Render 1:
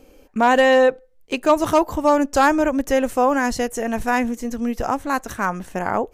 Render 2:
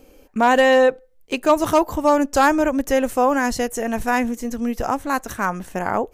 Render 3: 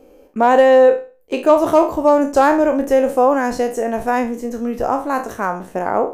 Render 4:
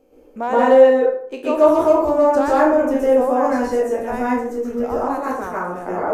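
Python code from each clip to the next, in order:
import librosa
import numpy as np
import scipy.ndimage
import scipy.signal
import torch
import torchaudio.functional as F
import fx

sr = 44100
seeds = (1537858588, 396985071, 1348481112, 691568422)

y1 = fx.high_shelf(x, sr, hz=11000.0, db=5.5)
y2 = fx.spec_trails(y1, sr, decay_s=0.35)
y2 = fx.peak_eq(y2, sr, hz=510.0, db=12.5, octaves=2.7)
y2 = F.gain(torch.from_numpy(y2), -7.5).numpy()
y3 = fx.rev_plate(y2, sr, seeds[0], rt60_s=0.56, hf_ratio=0.45, predelay_ms=110, drr_db=-7.0)
y3 = F.gain(torch.from_numpy(y3), -10.5).numpy()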